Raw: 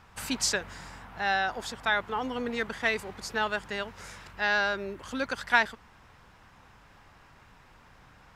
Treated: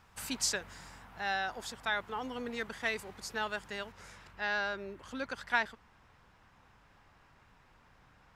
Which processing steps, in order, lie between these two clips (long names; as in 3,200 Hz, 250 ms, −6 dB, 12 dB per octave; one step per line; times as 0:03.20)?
high-shelf EQ 5,700 Hz +6 dB, from 0:03.92 −3 dB
level −7 dB